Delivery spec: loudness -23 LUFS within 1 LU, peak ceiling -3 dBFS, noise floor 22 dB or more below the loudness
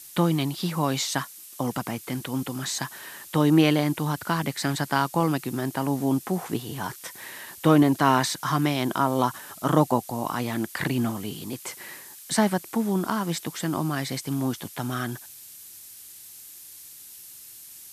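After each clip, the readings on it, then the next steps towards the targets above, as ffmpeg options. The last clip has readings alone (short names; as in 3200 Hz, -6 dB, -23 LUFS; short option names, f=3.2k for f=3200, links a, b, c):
noise floor -45 dBFS; noise floor target -48 dBFS; loudness -26.0 LUFS; peak -4.5 dBFS; loudness target -23.0 LUFS
-> -af "afftdn=nr=6:nf=-45"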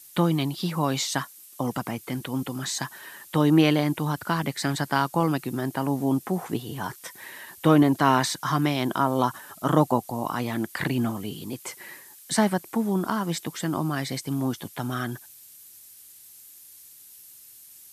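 noise floor -49 dBFS; loudness -26.0 LUFS; peak -4.5 dBFS; loudness target -23.0 LUFS
-> -af "volume=3dB,alimiter=limit=-3dB:level=0:latency=1"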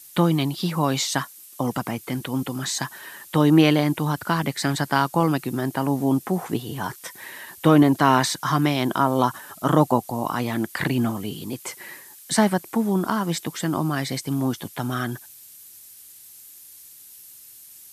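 loudness -23.0 LUFS; peak -3.0 dBFS; noise floor -46 dBFS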